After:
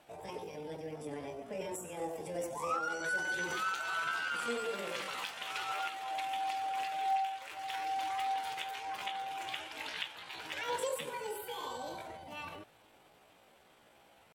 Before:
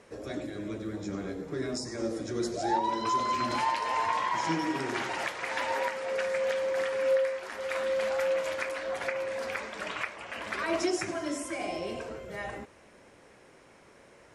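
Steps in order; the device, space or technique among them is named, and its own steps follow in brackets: 9.37–10.28 s: peaking EQ 1.9 kHz +4 dB 0.6 oct; chipmunk voice (pitch shift +6.5 st); trim -6.5 dB

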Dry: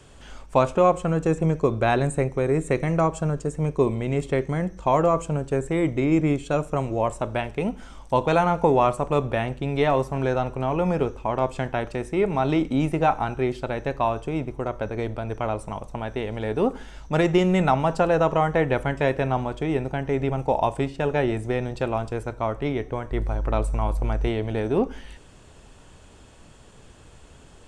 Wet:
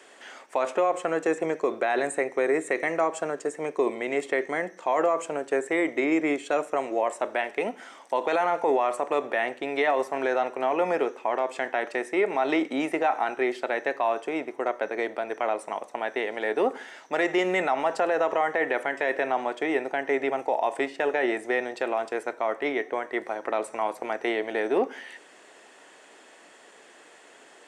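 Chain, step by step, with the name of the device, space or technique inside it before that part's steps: laptop speaker (high-pass 310 Hz 24 dB/octave; peaking EQ 710 Hz +4 dB 0.36 oct; peaking EQ 1.9 kHz +10.5 dB 0.48 oct; peak limiter -14.5 dBFS, peak gain reduction 11 dB)

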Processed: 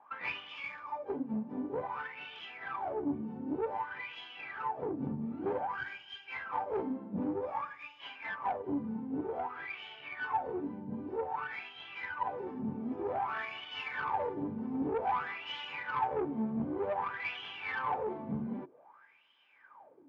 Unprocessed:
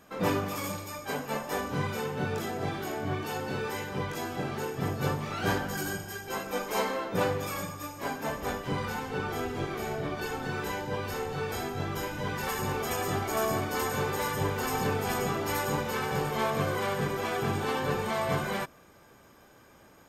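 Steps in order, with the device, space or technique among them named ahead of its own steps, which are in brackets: wah-wah guitar rig (wah-wah 0.53 Hz 210–3100 Hz, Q 9.9; valve stage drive 38 dB, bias 0.4; cabinet simulation 82–4400 Hz, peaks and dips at 83 Hz +6 dB, 130 Hz +6 dB, 270 Hz +5 dB, 900 Hz +9 dB, 2.3 kHz +3 dB, 4 kHz -4 dB); trim +9 dB

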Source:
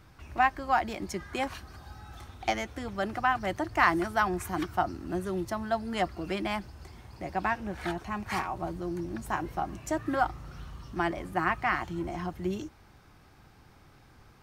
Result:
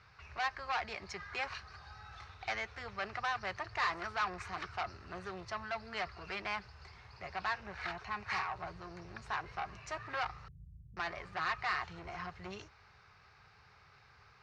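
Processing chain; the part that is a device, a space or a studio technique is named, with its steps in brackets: 10.48–10.97 s: inverse Chebyshev band-stop 910–7200 Hz, stop band 70 dB; scooped metal amplifier (valve stage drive 29 dB, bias 0.35; cabinet simulation 92–4500 Hz, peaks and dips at 420 Hz +10 dB, 1.2 kHz +3 dB, 3.3 kHz -10 dB; amplifier tone stack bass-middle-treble 10-0-10); trim +7 dB

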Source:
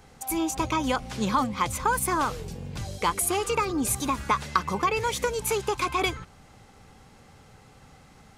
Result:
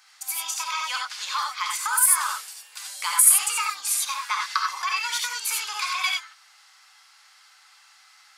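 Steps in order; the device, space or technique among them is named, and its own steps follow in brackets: headphones lying on a table (high-pass 1.2 kHz 24 dB/octave; peaking EQ 4.7 kHz +7.5 dB 0.48 oct); 1.85–3.72 s: resonant high shelf 6.9 kHz +7.5 dB, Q 1.5; gated-style reverb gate 110 ms rising, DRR 0 dB; trim +1 dB

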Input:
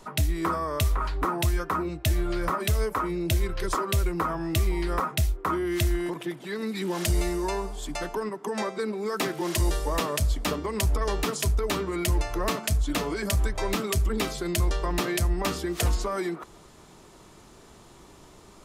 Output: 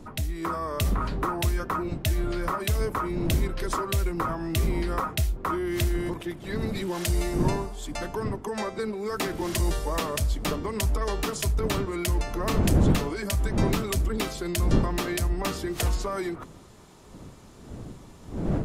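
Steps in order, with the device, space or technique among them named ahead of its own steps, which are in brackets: smartphone video outdoors (wind noise; level rider gain up to 4.5 dB; trim -5.5 dB; AAC 96 kbps 48 kHz)

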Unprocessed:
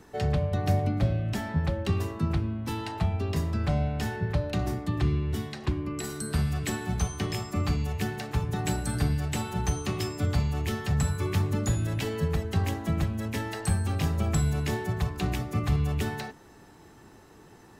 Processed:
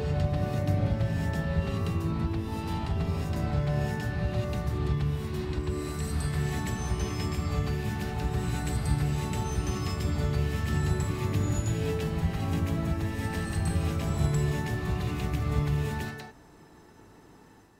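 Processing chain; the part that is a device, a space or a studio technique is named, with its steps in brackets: reverse reverb (reverse; reverberation RT60 2.3 s, pre-delay 93 ms, DRR -4 dB; reverse); trim -7 dB

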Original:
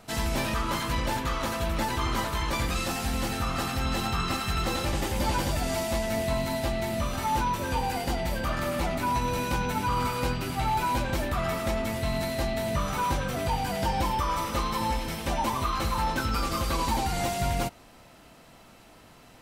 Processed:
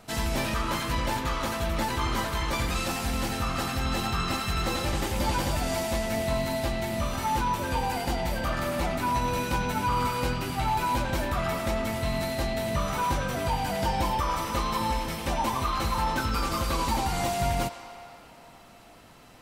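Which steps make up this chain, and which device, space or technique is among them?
filtered reverb send (on a send: high-pass 570 Hz + low-pass 8.4 kHz + reverberation RT60 3.3 s, pre-delay 76 ms, DRR 9.5 dB)

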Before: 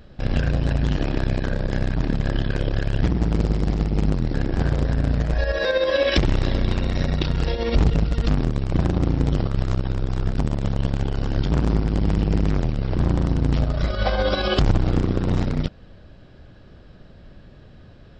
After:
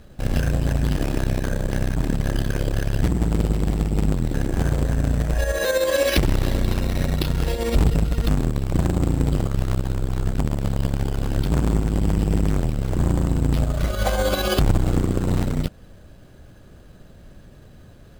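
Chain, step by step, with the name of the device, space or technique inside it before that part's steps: crushed at another speed (playback speed 0.8×; sample-and-hold 7×; playback speed 1.25×)

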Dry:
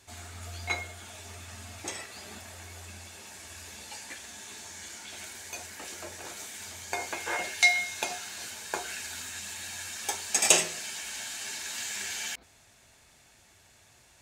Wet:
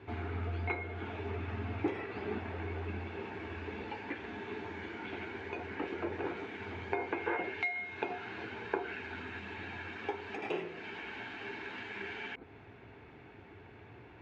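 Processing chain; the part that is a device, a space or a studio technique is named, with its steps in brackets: bass amplifier (compression 3:1, threshold -42 dBFS, peak gain reduction 19.5 dB; cabinet simulation 73–2200 Hz, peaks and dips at 110 Hz +5 dB, 300 Hz +8 dB, 420 Hz +9 dB, 610 Hz -8 dB, 1.2 kHz -4 dB, 1.8 kHz -6 dB); trim +9.5 dB

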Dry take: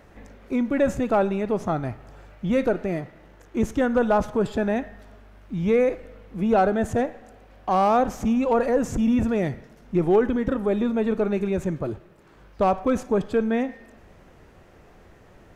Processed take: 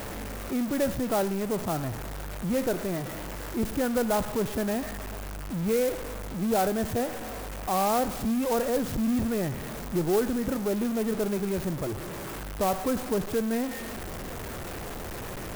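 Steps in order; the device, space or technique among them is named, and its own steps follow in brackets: early CD player with a faulty converter (jump at every zero crossing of -23.5 dBFS; sampling jitter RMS 0.06 ms); trim -7.5 dB

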